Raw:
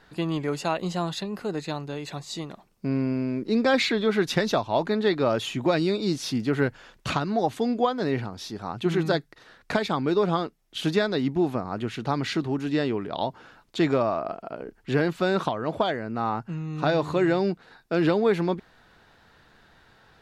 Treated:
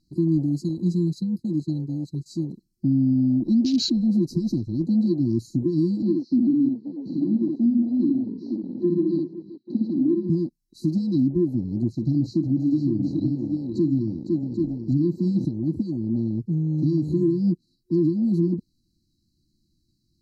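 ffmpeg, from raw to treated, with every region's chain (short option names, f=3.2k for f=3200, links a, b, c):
-filter_complex "[0:a]asettb=1/sr,asplit=3[a][b][c];[a]atrim=end=0.694[d];[b]atrim=start=0.69:end=2.26,asetpts=PTS-STARTPTS,afade=t=in:d=0.004:c=qsin,afade=t=out:st=1.566:d=0.004:c=qsin,deesser=0.35,agate=range=-33dB:threshold=-35dB:ratio=3:release=100:detection=peak[e];[c]atrim=start=2.256[f];[d][e]acrossfade=d=0.004:c1=hsin:c2=qsin[g];[g][f]acrossfade=d=0.004:c1=qsin:c2=hsin,asettb=1/sr,asplit=3[h][i][j];[h]atrim=end=6.024[k];[i]atrim=start=6.02:end=10.3,asetpts=PTS-STARTPTS,afade=t=in:d=0.004:c=qsin,afade=t=out:st=4.276:d=0.004:c=qsin,highpass=f=230:w=0.5412,highpass=f=230:w=1.3066,equalizer=f=240:t=q:w=4:g=4,equalizer=f=540:t=q:w=4:g=5,equalizer=f=1.6k:t=q:w=4:g=-10,lowpass=f=3.3k:w=0.5412,lowpass=f=3.3k:w=1.3066,aecho=1:1:47|60|384|836:0.112|0.668|0.158|0.1,atrim=end_sample=188748[l];[j]atrim=start=10.296[m];[k][l]acrossfade=d=0.004:c1=hsin:c2=qsin[n];[n][m]acrossfade=d=0.004:c1=qsin:c2=hsin,asettb=1/sr,asplit=3[o][p][q];[o]atrim=end=11.924[r];[p]atrim=start=11.92:end=15.45,asetpts=PTS-STARTPTS,afade=t=in:d=0.004:c=qsin,afade=t=out:st=3.526:d=0.004:c=qsin,equalizer=f=10k:t=o:w=0.41:g=-13,aecho=1:1:45|55|506|786:0.178|0.126|0.355|0.335,atrim=end_sample=155673[s];[q]atrim=start=15.446[t];[r][s]acrossfade=d=0.004:c1=hsin:c2=qsin[u];[u][t]acrossfade=d=0.004:c1=qsin:c2=hsin,afftfilt=real='re*(1-between(b*sr/4096,360,3900))':imag='im*(1-between(b*sr/4096,360,3900))':win_size=4096:overlap=0.75,afwtdn=0.0141,alimiter=limit=-22dB:level=0:latency=1:release=208,volume=8.5dB"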